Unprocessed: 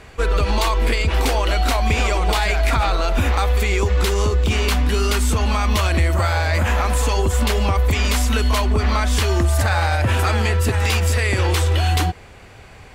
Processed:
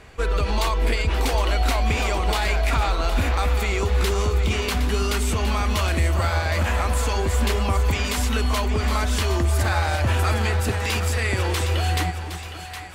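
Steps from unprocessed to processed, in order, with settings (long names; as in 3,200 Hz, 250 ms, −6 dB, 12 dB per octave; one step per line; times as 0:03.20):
0:09.56–0:11.67: floating-point word with a short mantissa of 8 bits
echo with a time of its own for lows and highs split 710 Hz, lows 270 ms, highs 764 ms, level −9.5 dB
level −4 dB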